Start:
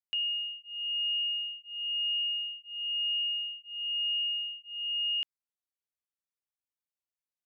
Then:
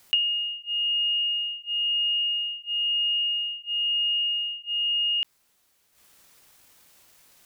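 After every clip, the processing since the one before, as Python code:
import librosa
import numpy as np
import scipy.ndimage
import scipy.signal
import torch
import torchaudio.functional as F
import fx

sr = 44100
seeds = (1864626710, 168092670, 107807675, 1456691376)

y = fx.transient(x, sr, attack_db=12, sustain_db=-12)
y = fx.env_flatten(y, sr, amount_pct=50)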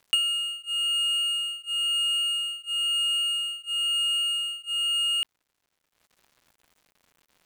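y = scipy.ndimage.median_filter(x, 9, mode='constant')
y = y * librosa.db_to_amplitude(2.0)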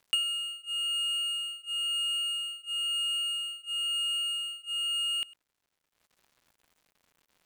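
y = x + 10.0 ** (-21.5 / 20.0) * np.pad(x, (int(103 * sr / 1000.0), 0))[:len(x)]
y = y * librosa.db_to_amplitude(-4.5)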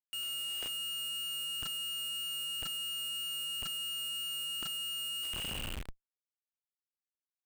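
y = fx.spec_trails(x, sr, decay_s=1.75)
y = fx.schmitt(y, sr, flips_db=-42.0)
y = y * librosa.db_to_amplitude(-5.0)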